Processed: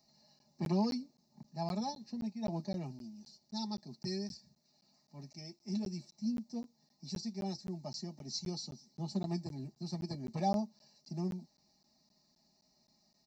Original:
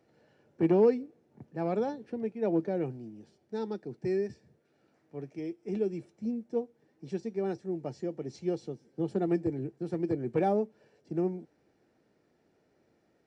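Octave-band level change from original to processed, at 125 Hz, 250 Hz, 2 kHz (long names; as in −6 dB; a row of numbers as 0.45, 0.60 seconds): −2.0, −5.5, −9.5 decibels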